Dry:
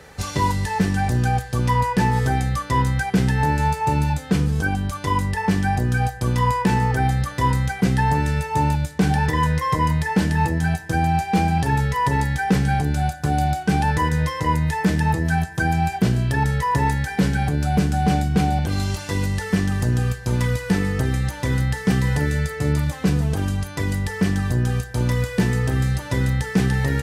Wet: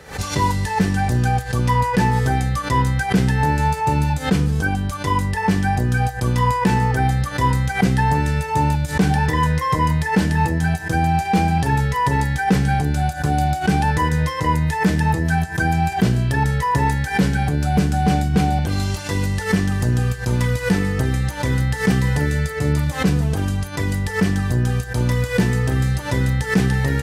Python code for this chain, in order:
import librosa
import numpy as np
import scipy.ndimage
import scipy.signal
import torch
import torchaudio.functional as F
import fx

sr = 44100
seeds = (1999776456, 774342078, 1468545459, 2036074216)

y = fx.pre_swell(x, sr, db_per_s=150.0)
y = F.gain(torch.from_numpy(y), 1.5).numpy()